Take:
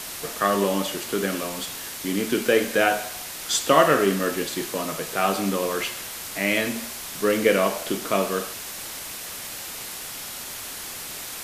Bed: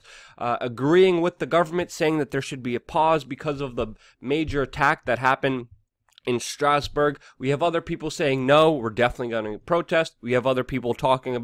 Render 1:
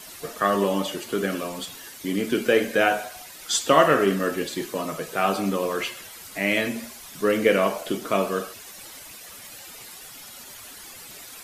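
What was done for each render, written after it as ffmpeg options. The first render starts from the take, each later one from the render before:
ffmpeg -i in.wav -af "afftdn=noise_reduction=11:noise_floor=-36" out.wav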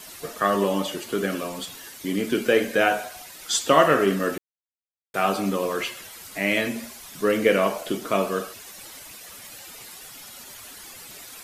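ffmpeg -i in.wav -filter_complex "[0:a]asplit=3[link_01][link_02][link_03];[link_01]atrim=end=4.38,asetpts=PTS-STARTPTS,afade=type=out:start_time=4.376:duration=0.004:curve=hsin[link_04];[link_02]atrim=start=4.38:end=5.14,asetpts=PTS-STARTPTS,volume=0[link_05];[link_03]atrim=start=5.14,asetpts=PTS-STARTPTS,afade=type=in:duration=0.004:curve=hsin[link_06];[link_04][link_05][link_06]concat=n=3:v=0:a=1" out.wav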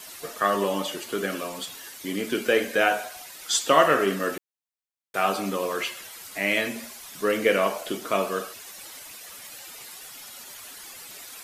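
ffmpeg -i in.wav -af "lowshelf=frequency=300:gain=-8" out.wav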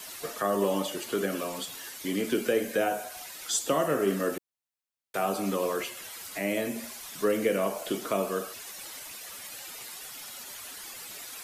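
ffmpeg -i in.wav -filter_complex "[0:a]acrossover=split=290|810|6500[link_01][link_02][link_03][link_04];[link_02]alimiter=limit=-19.5dB:level=0:latency=1:release=467[link_05];[link_03]acompressor=threshold=-37dB:ratio=4[link_06];[link_01][link_05][link_06][link_04]amix=inputs=4:normalize=0" out.wav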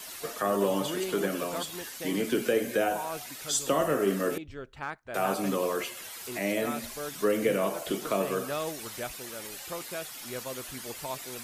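ffmpeg -i in.wav -i bed.wav -filter_complex "[1:a]volume=-17dB[link_01];[0:a][link_01]amix=inputs=2:normalize=0" out.wav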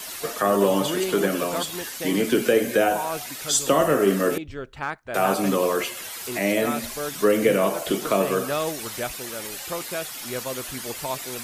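ffmpeg -i in.wav -af "volume=7dB" out.wav

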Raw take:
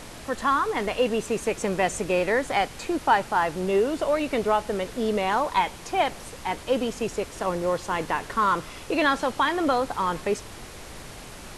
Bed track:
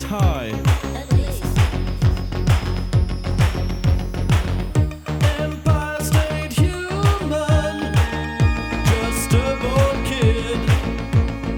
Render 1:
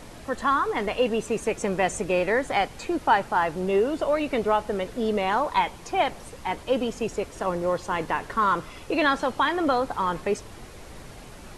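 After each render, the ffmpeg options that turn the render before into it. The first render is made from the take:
ffmpeg -i in.wav -af "afftdn=noise_reduction=6:noise_floor=-42" out.wav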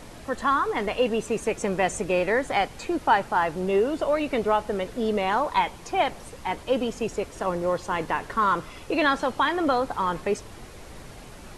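ffmpeg -i in.wav -af anull out.wav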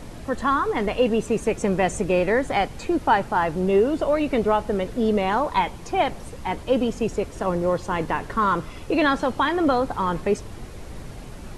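ffmpeg -i in.wav -af "lowshelf=frequency=370:gain=8" out.wav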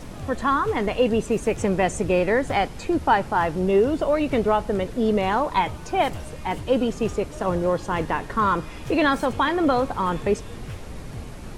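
ffmpeg -i in.wav -i bed.wav -filter_complex "[1:a]volume=-21dB[link_01];[0:a][link_01]amix=inputs=2:normalize=0" out.wav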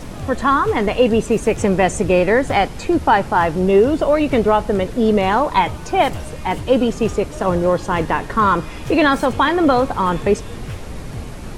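ffmpeg -i in.wav -af "volume=6dB,alimiter=limit=-3dB:level=0:latency=1" out.wav

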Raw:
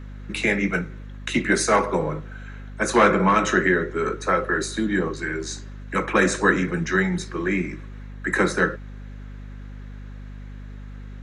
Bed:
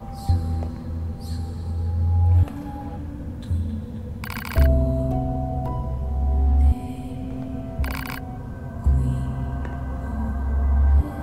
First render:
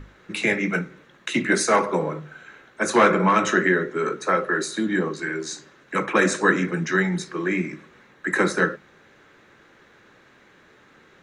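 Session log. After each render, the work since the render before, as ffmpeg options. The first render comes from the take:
ffmpeg -i in.wav -af "bandreject=frequency=50:width_type=h:width=6,bandreject=frequency=100:width_type=h:width=6,bandreject=frequency=150:width_type=h:width=6,bandreject=frequency=200:width_type=h:width=6,bandreject=frequency=250:width_type=h:width=6" out.wav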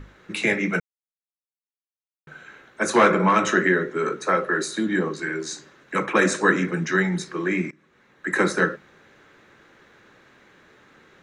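ffmpeg -i in.wav -filter_complex "[0:a]asplit=4[link_01][link_02][link_03][link_04];[link_01]atrim=end=0.8,asetpts=PTS-STARTPTS,afade=type=out:start_time=0.796:duration=0.004:curve=hsin[link_05];[link_02]atrim=start=0.8:end=2.27,asetpts=PTS-STARTPTS,volume=0[link_06];[link_03]atrim=start=2.27:end=7.71,asetpts=PTS-STARTPTS,afade=type=in:duration=0.004:curve=hsin,afade=type=out:start_time=5.436:duration=0.004:curve=hsin:silence=0.0668344[link_07];[link_04]atrim=start=7.71,asetpts=PTS-STARTPTS,afade=type=in:duration=0.69:silence=0.0668344[link_08];[link_05][link_06][link_07][link_08]concat=n=4:v=0:a=1" out.wav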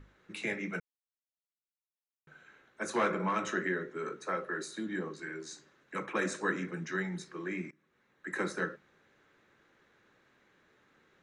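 ffmpeg -i in.wav -af "volume=-13.5dB" out.wav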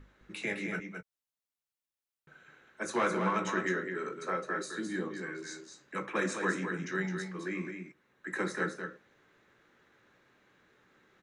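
ffmpeg -i in.wav -filter_complex "[0:a]asplit=2[link_01][link_02];[link_02]adelay=16,volume=-12.5dB[link_03];[link_01][link_03]amix=inputs=2:normalize=0,aecho=1:1:212:0.473" out.wav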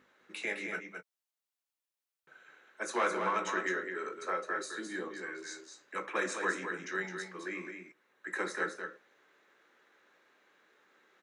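ffmpeg -i in.wav -af "highpass=380" out.wav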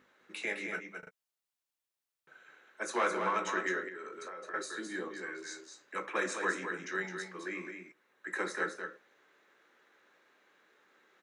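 ffmpeg -i in.wav -filter_complex "[0:a]asettb=1/sr,asplit=3[link_01][link_02][link_03];[link_01]atrim=end=3.884[link_04];[link_02]atrim=start=3.88:end=4.54,asetpts=PTS-STARTPTS,afade=type=in:duration=0.004:curve=qsin,afade=type=out:start_time=0.656:duration=0.004:curve=qsin,acompressor=threshold=-40dB:ratio=16:attack=3.2:release=140:knee=1:detection=peak[link_05];[link_03]atrim=start=4.536[link_06];[link_04][link_05]acrossfade=duration=0.004:curve1=hsin:curve2=qsin[link_07];[link_07][link_06]acrossfade=duration=0.004:curve1=qsin:curve2=hsin,asplit=4[link_08][link_09][link_10][link_11];[link_08]atrim=end=1.032[link_12];[link_09]atrim=start=0.988:end=1.032[link_13];[link_10]atrim=start=0.988:end=1.032[link_14];[link_11]atrim=start=1.108[link_15];[link_12][link_13]acrossfade=duration=0.004:curve1=hsin:curve2=hsin[link_16];[link_16][link_14]acrossfade=duration=0.004:curve1=hsin:curve2=hsin[link_17];[link_17][link_15]acrossfade=duration=0.004:curve1=hsin:curve2=hsin" out.wav

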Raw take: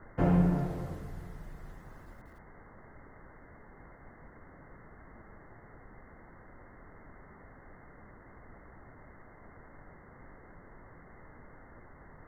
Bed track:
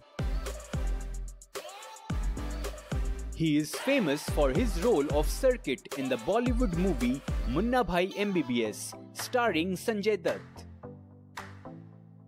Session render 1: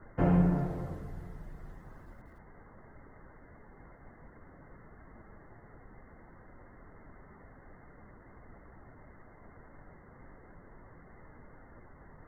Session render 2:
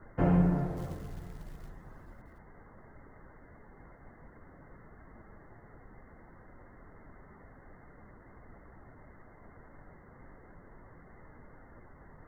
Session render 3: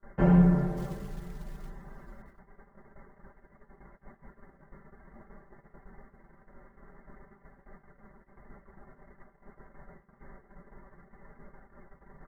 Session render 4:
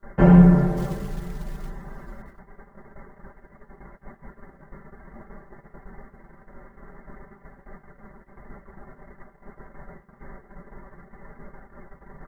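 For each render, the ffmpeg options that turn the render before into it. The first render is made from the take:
ffmpeg -i in.wav -af "afftdn=noise_reduction=6:noise_floor=-55" out.wav
ffmpeg -i in.wav -filter_complex "[0:a]asplit=3[link_01][link_02][link_03];[link_01]afade=type=out:start_time=0.76:duration=0.02[link_04];[link_02]acrusher=bits=5:mode=log:mix=0:aa=0.000001,afade=type=in:start_time=0.76:duration=0.02,afade=type=out:start_time=1.68:duration=0.02[link_05];[link_03]afade=type=in:start_time=1.68:duration=0.02[link_06];[link_04][link_05][link_06]amix=inputs=3:normalize=0" out.wav
ffmpeg -i in.wav -af "agate=range=-24dB:threshold=-52dB:ratio=16:detection=peak,aecho=1:1:5.1:0.99" out.wav
ffmpeg -i in.wav -af "volume=8.5dB" out.wav

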